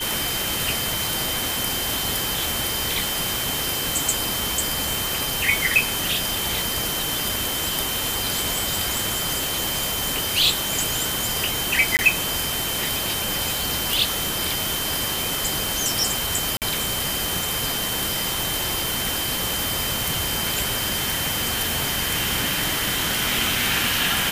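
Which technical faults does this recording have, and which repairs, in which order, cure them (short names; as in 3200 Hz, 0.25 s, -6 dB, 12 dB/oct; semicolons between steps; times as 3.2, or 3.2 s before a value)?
tone 3100 Hz -29 dBFS
11.97–11.99 gap 19 ms
16.57–16.62 gap 48 ms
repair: notch 3100 Hz, Q 30; interpolate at 11.97, 19 ms; interpolate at 16.57, 48 ms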